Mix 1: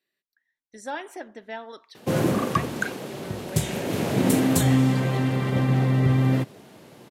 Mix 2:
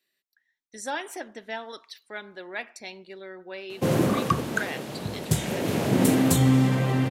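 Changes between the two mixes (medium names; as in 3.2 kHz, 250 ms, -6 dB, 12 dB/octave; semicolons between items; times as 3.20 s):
speech: add treble shelf 2.5 kHz +8.5 dB; background: entry +1.75 s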